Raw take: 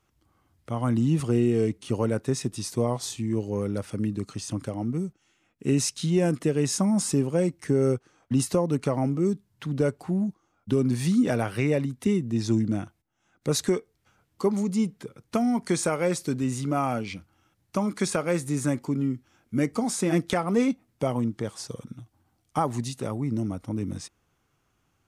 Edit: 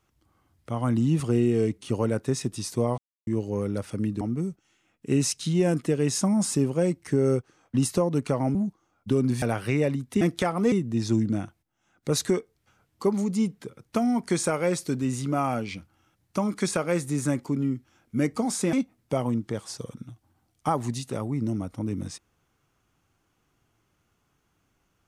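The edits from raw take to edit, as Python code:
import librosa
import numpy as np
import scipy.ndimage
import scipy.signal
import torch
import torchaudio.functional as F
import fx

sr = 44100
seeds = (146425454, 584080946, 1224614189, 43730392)

y = fx.edit(x, sr, fx.silence(start_s=2.98, length_s=0.29),
    fx.cut(start_s=4.21, length_s=0.57),
    fx.cut(start_s=9.12, length_s=1.04),
    fx.cut(start_s=11.03, length_s=0.29),
    fx.move(start_s=20.12, length_s=0.51, to_s=12.11), tone=tone)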